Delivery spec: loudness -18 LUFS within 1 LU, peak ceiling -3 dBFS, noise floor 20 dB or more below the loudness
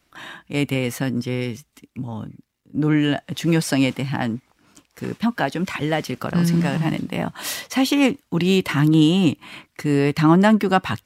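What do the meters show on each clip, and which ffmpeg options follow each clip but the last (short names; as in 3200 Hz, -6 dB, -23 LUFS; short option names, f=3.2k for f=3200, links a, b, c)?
loudness -20.5 LUFS; peak -2.5 dBFS; loudness target -18.0 LUFS
-> -af "volume=2.5dB,alimiter=limit=-3dB:level=0:latency=1"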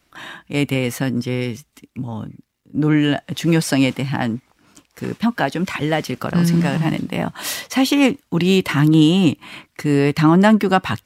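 loudness -18.0 LUFS; peak -3.0 dBFS; noise floor -66 dBFS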